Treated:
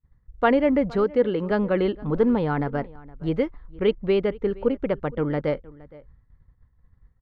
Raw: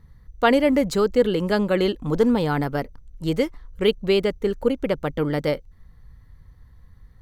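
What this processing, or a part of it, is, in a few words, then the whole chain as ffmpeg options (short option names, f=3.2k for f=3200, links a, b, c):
hearing-loss simulation: -filter_complex "[0:a]asettb=1/sr,asplit=3[a][b][c];[a]atrim=end=1.044[d];[b]atrim=start=1.04:end=1.51,asetpts=PTS-STARTPTS,afade=t=in:d=0.004:c=qsin,afade=t=out:st=0.466:d=0.004:c=qsin,highpass=f=150:p=1[e];[c]atrim=start=1.506[f];[d][e]acrossfade=d=0.004:c1=hsin:c2=qsin[g];[g][f]acrossfade=d=0.004:c1=qsin:c2=hsin,lowpass=2.1k,agate=range=-33dB:threshold=-39dB:ratio=3:detection=peak,equalizer=f=7.7k:w=2.9:g=-3.5,asplit=2[h][i];[i]adelay=466.5,volume=-21dB,highshelf=f=4k:g=-10.5[j];[h][j]amix=inputs=2:normalize=0,volume=-1.5dB"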